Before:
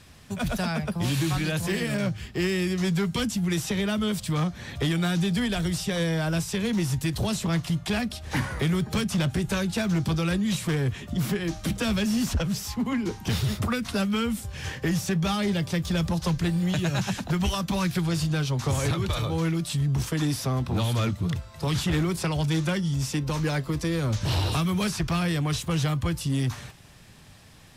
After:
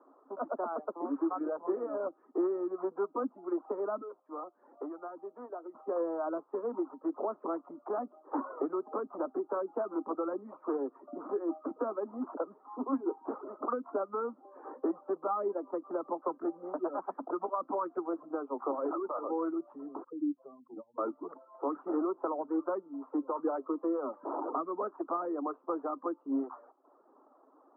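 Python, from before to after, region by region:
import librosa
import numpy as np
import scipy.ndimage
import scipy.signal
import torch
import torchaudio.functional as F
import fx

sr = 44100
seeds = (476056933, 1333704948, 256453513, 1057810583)

y = fx.chain(x, sr, fx.highpass(hz=830.0, slope=6),
    fx.peak_eq(hz=1600.0, db=-6.5, octaves=1.9), at=(4.01, 5.75))
y = fx.chain(y, sr, fx.spec_expand(power=2.4),
    fx.spacing_loss(db_at_10k=45), at=(20.04, 20.98))
y = scipy.signal.sosfilt(scipy.signal.cheby1(5, 1.0, [270.0, 1300.0], 'bandpass', fs=sr, output='sos'), y)
y = fx.dereverb_blind(y, sr, rt60_s=0.7)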